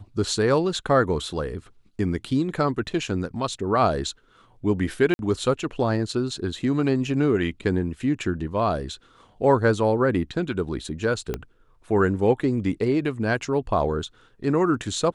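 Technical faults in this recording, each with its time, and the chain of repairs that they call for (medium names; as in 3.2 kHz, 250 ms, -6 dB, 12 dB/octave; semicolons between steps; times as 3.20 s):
5.14–5.19 s: dropout 51 ms
11.34 s: pop -14 dBFS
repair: de-click; interpolate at 5.14 s, 51 ms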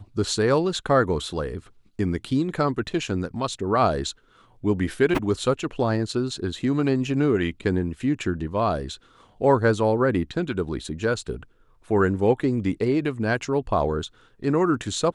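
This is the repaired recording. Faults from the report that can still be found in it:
11.34 s: pop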